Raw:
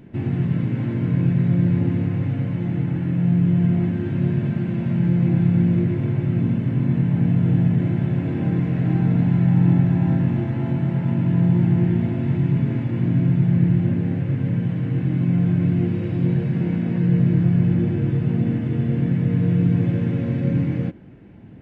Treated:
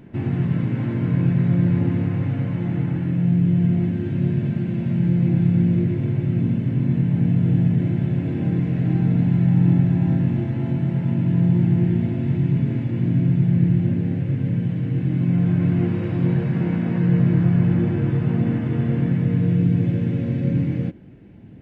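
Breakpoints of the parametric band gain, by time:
parametric band 1,100 Hz 1.6 octaves
0:02.83 +2.5 dB
0:03.37 −5 dB
0:14.97 −5 dB
0:15.83 +5.5 dB
0:18.88 +5.5 dB
0:19.72 −5 dB

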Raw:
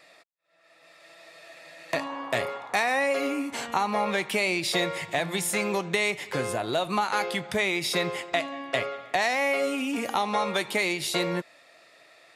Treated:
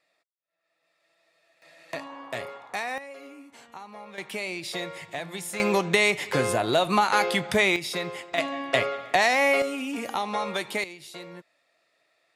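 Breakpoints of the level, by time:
−18 dB
from 0:01.62 −6.5 dB
from 0:02.98 −17 dB
from 0:04.18 −7 dB
from 0:05.60 +4.5 dB
from 0:07.76 −4 dB
from 0:08.38 +4 dB
from 0:09.62 −2.5 dB
from 0:10.84 −14.5 dB

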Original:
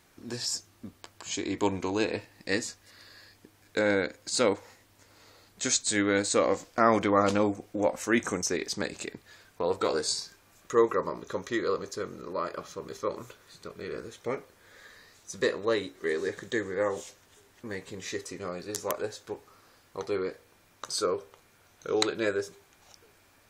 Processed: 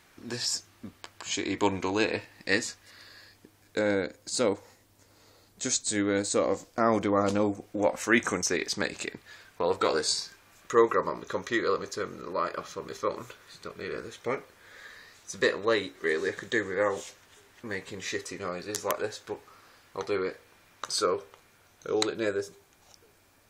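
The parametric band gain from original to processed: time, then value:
parametric band 2,000 Hz 2.5 octaves
0:02.69 +5 dB
0:04.06 −5 dB
0:07.33 −5 dB
0:08.00 +5 dB
0:21.14 +5 dB
0:22.04 −2.5 dB

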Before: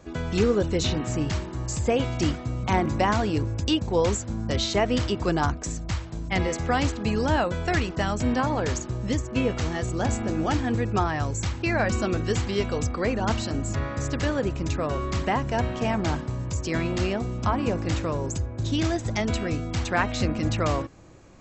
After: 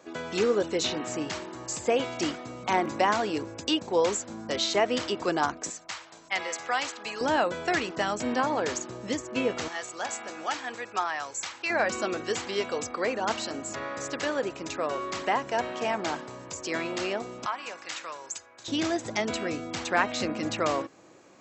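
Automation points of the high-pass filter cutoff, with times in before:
340 Hz
from 0:05.70 790 Hz
from 0:07.21 310 Hz
from 0:09.68 830 Hz
from 0:11.70 400 Hz
from 0:17.46 1,200 Hz
from 0:18.68 290 Hz

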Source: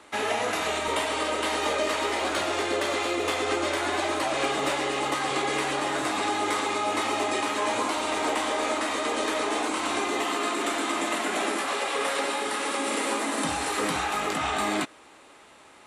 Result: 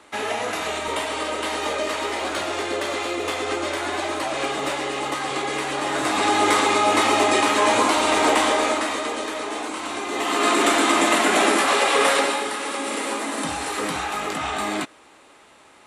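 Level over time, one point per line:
0:05.67 +1 dB
0:06.41 +8.5 dB
0:08.45 +8.5 dB
0:09.29 −1.5 dB
0:10.03 −1.5 dB
0:10.50 +9.5 dB
0:12.11 +9.5 dB
0:12.56 +1 dB

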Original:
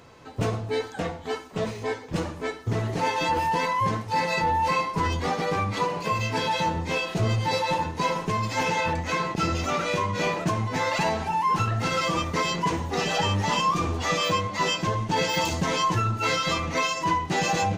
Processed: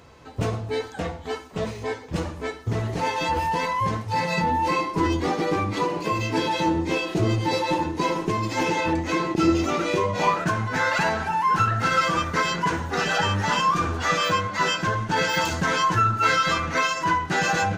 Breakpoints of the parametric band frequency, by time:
parametric band +14 dB 0.4 octaves
0:03.93 63 Hz
0:04.64 330 Hz
0:09.93 330 Hz
0:10.41 1,500 Hz

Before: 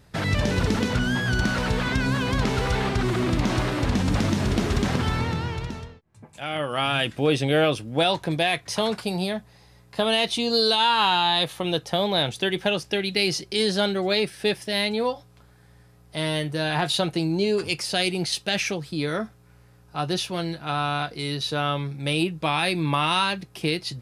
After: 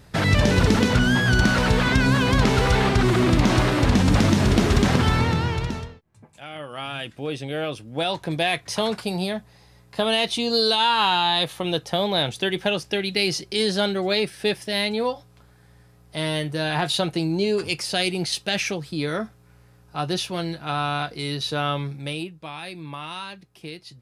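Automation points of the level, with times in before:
0:05.77 +5 dB
0:06.51 −8 dB
0:07.57 −8 dB
0:08.48 +0.5 dB
0:21.90 +0.5 dB
0:22.38 −12 dB

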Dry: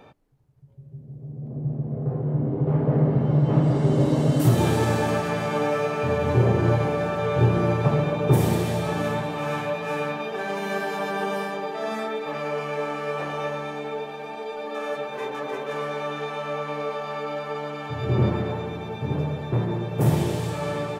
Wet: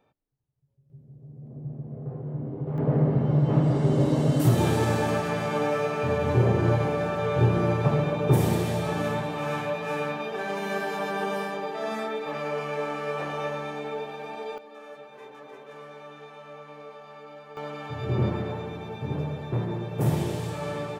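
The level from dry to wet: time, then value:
−18.5 dB
from 0:00.90 −8.5 dB
from 0:02.78 −2 dB
from 0:14.58 −14.5 dB
from 0:17.57 −4 dB

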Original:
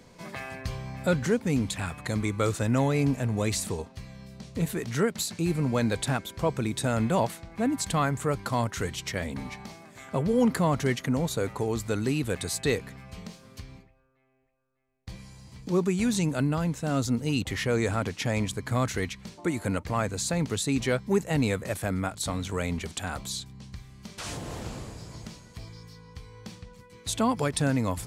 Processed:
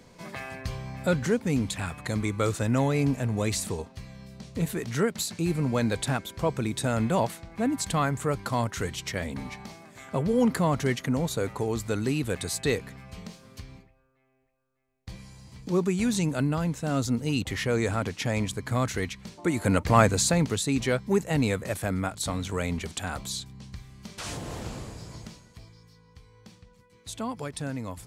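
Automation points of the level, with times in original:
0:19.35 0 dB
0:20.00 +9.5 dB
0:20.62 +0.5 dB
0:25.14 +0.5 dB
0:25.75 −8 dB

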